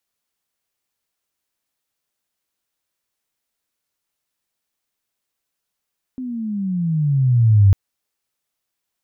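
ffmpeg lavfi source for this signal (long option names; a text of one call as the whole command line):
ffmpeg -f lavfi -i "aevalsrc='pow(10,(-7+18*(t/1.55-1))/20)*sin(2*PI*261*1.55/(-17.5*log(2)/12)*(exp(-17.5*log(2)/12*t/1.55)-1))':duration=1.55:sample_rate=44100" out.wav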